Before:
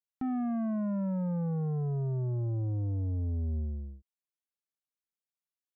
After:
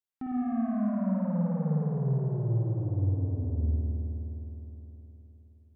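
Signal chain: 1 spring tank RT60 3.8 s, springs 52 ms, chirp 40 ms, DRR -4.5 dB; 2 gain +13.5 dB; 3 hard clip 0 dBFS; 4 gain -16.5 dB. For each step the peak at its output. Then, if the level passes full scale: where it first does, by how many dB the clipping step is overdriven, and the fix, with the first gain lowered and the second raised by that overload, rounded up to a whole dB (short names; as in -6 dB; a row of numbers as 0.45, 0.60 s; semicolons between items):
-16.0, -2.5, -2.5, -19.0 dBFS; no overload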